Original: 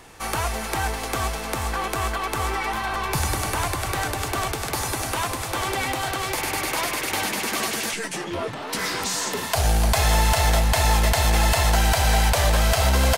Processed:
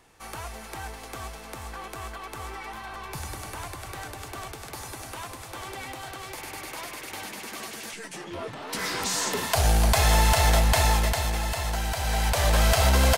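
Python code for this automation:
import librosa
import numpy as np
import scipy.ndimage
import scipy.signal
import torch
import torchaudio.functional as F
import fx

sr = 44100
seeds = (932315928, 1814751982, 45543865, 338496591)

y = fx.gain(x, sr, db=fx.line((7.77, -12.0), (9.2, -1.0), (10.78, -1.0), (11.42, -9.5), (11.95, -9.5), (12.61, -1.0)))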